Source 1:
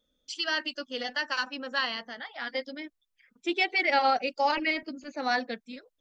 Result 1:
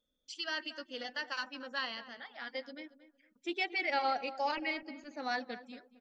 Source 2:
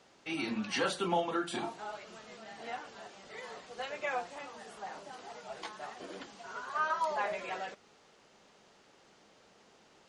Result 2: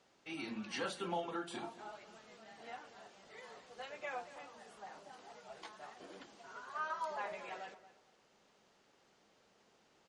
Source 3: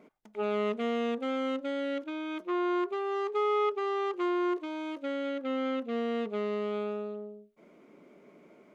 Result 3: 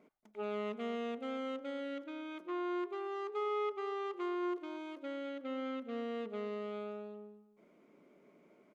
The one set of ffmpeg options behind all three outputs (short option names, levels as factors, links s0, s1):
-filter_complex "[0:a]asplit=2[s0][s1];[s1]adelay=229,lowpass=f=1800:p=1,volume=0.2,asplit=2[s2][s3];[s3]adelay=229,lowpass=f=1800:p=1,volume=0.26,asplit=2[s4][s5];[s5]adelay=229,lowpass=f=1800:p=1,volume=0.26[s6];[s0][s2][s4][s6]amix=inputs=4:normalize=0,volume=0.398"